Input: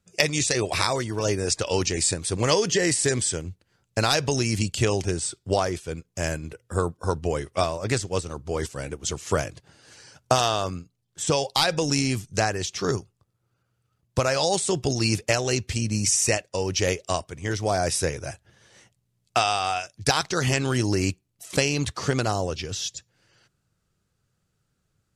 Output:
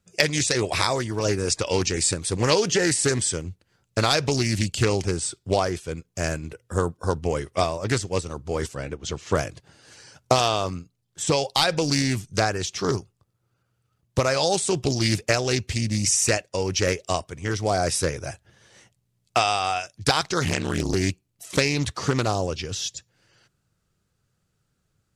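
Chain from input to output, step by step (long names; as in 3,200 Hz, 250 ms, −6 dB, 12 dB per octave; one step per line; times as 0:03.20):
0:08.75–0:09.35: low-pass filter 4,900 Hz 12 dB per octave
0:20.44–0:20.94: ring modulation 38 Hz
highs frequency-modulated by the lows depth 0.33 ms
level +1 dB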